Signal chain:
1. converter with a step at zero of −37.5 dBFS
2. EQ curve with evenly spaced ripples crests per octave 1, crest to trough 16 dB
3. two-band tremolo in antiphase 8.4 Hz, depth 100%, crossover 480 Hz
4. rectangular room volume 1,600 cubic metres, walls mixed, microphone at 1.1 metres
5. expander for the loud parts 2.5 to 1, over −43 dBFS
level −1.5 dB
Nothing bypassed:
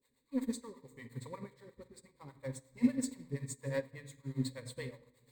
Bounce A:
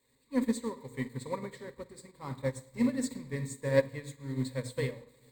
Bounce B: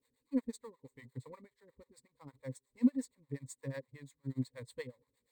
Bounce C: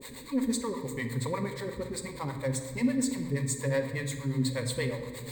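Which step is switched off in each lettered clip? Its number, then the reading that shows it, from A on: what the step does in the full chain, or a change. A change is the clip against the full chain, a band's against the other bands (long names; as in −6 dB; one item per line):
3, change in momentary loudness spread −5 LU
4, 250 Hz band +5.0 dB
5, 250 Hz band −6.0 dB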